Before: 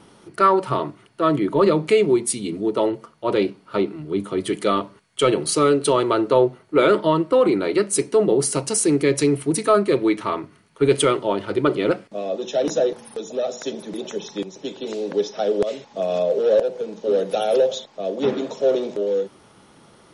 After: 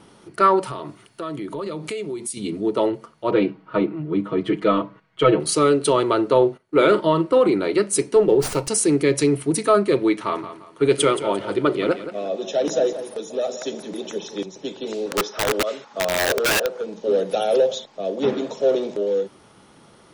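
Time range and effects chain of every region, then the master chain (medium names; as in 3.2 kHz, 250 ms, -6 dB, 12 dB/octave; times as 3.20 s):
0.63–2.37 s: treble shelf 4.3 kHz +9.5 dB + compression 4:1, threshold -28 dBFS
3.31–5.40 s: low-pass 2.4 kHz + comb 6.3 ms, depth 84%
6.37–7.38 s: doubling 43 ms -12 dB + gate -42 dBFS, range -14 dB
8.16–8.68 s: treble shelf 8.3 kHz -4 dB + comb 2.2 ms, depth 33% + sliding maximum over 3 samples
10.13–14.46 s: bass shelf 120 Hz -7 dB + feedback delay 174 ms, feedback 33%, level -12 dB
15.06–16.84 s: high-pass 280 Hz 6 dB/octave + peaking EQ 1.3 kHz +11.5 dB 0.65 oct + integer overflow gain 14.5 dB
whole clip: none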